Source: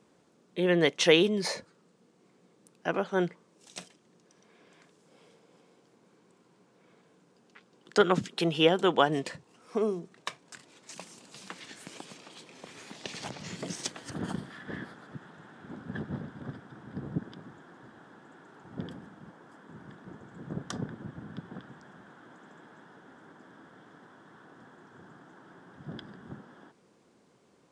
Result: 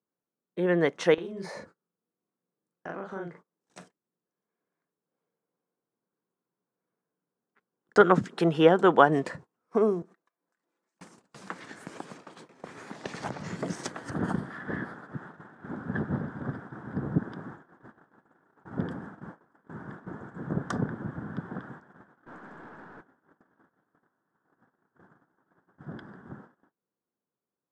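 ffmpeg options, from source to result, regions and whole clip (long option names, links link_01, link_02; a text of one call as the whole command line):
ffmpeg -i in.wav -filter_complex "[0:a]asettb=1/sr,asplit=3[link_01][link_02][link_03];[link_01]atrim=end=1.144[link_04];[link_02]atrim=start=1.14:end=3.8,asetpts=PTS-STARTPTS,afade=type=in:duration=0.004:curve=qsin,afade=type=out:start_time=2.656:duration=0.004:curve=qsin,acompressor=threshold=-35dB:ratio=8:attack=3.2:release=140:knee=1:detection=peak,asplit=2[link_05][link_06];[link_06]adelay=41,volume=-2dB[link_07];[link_05][link_07]amix=inputs=2:normalize=0,atrim=end_sample=117306[link_08];[link_03]atrim=start=3.796[link_09];[link_04][link_08]acrossfade=duration=0.004:curve1=hsin:curve2=qsin[link_10];[link_10][link_09]acrossfade=duration=0.004:curve1=qsin:curve2=hsin,asettb=1/sr,asplit=3[link_11][link_12][link_13];[link_11]atrim=end=10.024[link_14];[link_12]atrim=start=10.02:end=11.01,asetpts=PTS-STARTPTS,afade=type=in:duration=0.004:curve=qsin,afade=type=out:start_time=0.986:duration=0.004:curve=qsin,aecho=1:1:5.9:0.37,atrim=end_sample=43659,acompressor=threshold=-52dB:ratio=10:attack=3.2:release=140:knee=1:detection=peak,highpass=frequency=200:width=0.5412,highpass=frequency=200:width=1.3066[link_15];[link_13]atrim=start=11.006[link_16];[link_14][link_15]acrossfade=duration=0.004:curve1=hsin:curve2=qsin[link_17];[link_17][link_16]acrossfade=duration=0.004:curve1=qsin:curve2=hsin,asettb=1/sr,asplit=3[link_18][link_19][link_20];[link_18]atrim=end=22.264[link_21];[link_19]atrim=start=22.26:end=23.01,asetpts=PTS-STARTPTS,afade=type=in:duration=0.004:curve=qsin,afade=type=out:start_time=0.746:duration=0.004:curve=qsin,highshelf=frequency=8700:gain=-8.5,acontrast=89,aeval=exprs='(tanh(200*val(0)+0.3)-tanh(0.3))/200':channel_layout=same[link_22];[link_20]atrim=start=23.006[link_23];[link_21][link_22]acrossfade=duration=0.004:curve1=hsin:curve2=qsin[link_24];[link_24][link_23]acrossfade=duration=0.004:curve1=qsin:curve2=hsin,agate=range=-28dB:threshold=-50dB:ratio=16:detection=peak,highshelf=frequency=2100:width_type=q:width=1.5:gain=-9,dynaudnorm=framelen=980:gausssize=13:maxgain=7dB" out.wav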